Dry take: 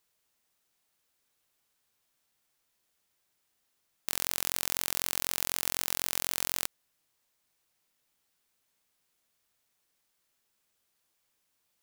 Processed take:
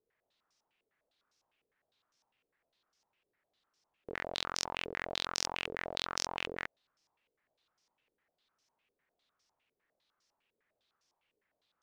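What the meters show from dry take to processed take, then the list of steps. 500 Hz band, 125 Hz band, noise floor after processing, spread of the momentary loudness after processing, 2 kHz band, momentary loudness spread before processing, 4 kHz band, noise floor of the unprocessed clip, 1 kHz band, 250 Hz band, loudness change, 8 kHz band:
+3.5 dB, −3.5 dB, below −85 dBFS, 8 LU, 0.0 dB, 4 LU, −1.5 dB, −77 dBFS, +1.5 dB, −1.0 dB, −7.0 dB, −10.0 dB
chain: parametric band 470 Hz +3 dB 2 octaves
low-pass on a step sequencer 9.9 Hz 450–5,500 Hz
level −4 dB

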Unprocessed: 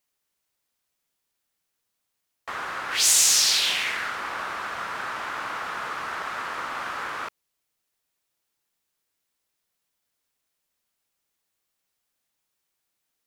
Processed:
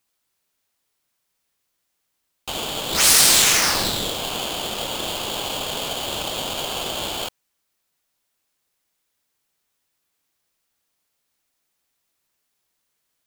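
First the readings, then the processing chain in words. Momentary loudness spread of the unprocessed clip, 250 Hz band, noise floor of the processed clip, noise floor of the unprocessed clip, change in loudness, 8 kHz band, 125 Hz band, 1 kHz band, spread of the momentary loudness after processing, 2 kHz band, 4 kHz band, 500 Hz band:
16 LU, +13.5 dB, −75 dBFS, −80 dBFS, +4.5 dB, +3.5 dB, +16.5 dB, +1.5 dB, 15 LU, +2.0 dB, +5.0 dB, +11.5 dB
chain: ring modulator with a square carrier 1,900 Hz
level +4.5 dB

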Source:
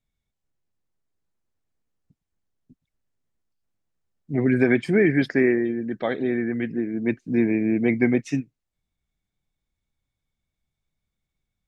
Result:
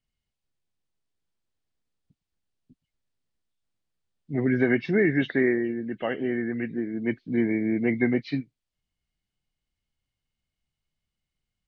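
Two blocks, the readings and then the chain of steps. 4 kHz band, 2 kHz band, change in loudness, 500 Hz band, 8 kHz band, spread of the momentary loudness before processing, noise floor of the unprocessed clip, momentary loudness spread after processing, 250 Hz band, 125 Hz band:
−0.5 dB, −2.0 dB, −3.5 dB, −3.5 dB, can't be measured, 8 LU, −83 dBFS, 8 LU, −3.5 dB, −3.5 dB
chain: hearing-aid frequency compression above 2,000 Hz 1.5 to 1
parametric band 3,100 Hz +5.5 dB 1.2 octaves
level −3.5 dB

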